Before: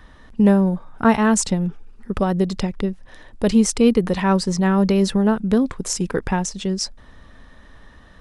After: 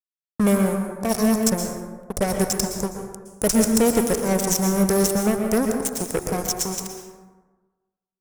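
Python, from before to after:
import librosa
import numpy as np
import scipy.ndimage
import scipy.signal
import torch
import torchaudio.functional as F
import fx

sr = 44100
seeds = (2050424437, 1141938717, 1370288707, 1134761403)

y = fx.tracing_dist(x, sr, depth_ms=0.11)
y = F.preemphasis(torch.from_numpy(y), 0.97).numpy()
y = fx.over_compress(y, sr, threshold_db=-34.0, ratio=-0.5)
y = scipy.signal.sosfilt(scipy.signal.cheby1(5, 1.0, [730.0, 5500.0], 'bandstop', fs=sr, output='sos'), y)
y = fx.low_shelf(y, sr, hz=150.0, db=8.5)
y = fx.fuzz(y, sr, gain_db=35.0, gate_db=-42.0)
y = fx.rev_plate(y, sr, seeds[0], rt60_s=1.3, hf_ratio=0.45, predelay_ms=105, drr_db=3.5)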